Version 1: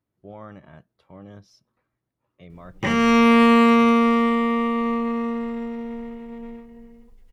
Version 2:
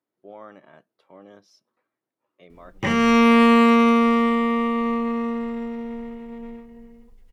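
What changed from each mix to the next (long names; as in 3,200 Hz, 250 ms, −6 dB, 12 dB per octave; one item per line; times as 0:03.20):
speech: add Chebyshev high-pass filter 350 Hz, order 2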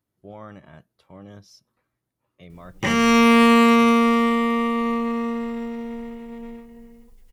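speech: remove Chebyshev high-pass filter 350 Hz, order 2
master: add high-shelf EQ 4,900 Hz +11.5 dB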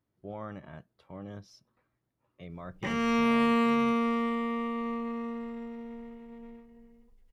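background −10.5 dB
master: add high-shelf EQ 4,900 Hz −11.5 dB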